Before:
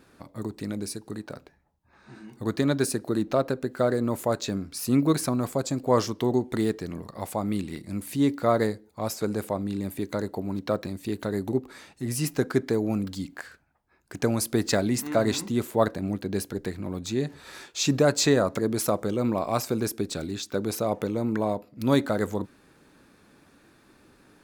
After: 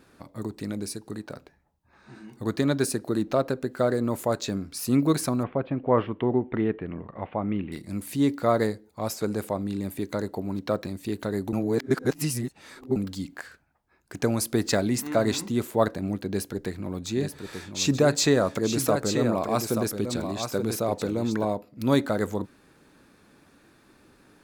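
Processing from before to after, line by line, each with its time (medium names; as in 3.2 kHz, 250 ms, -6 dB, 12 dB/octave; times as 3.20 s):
5.43–7.72 s: steep low-pass 3 kHz 48 dB/octave
11.53–12.96 s: reverse
16.28–21.45 s: delay 883 ms -7 dB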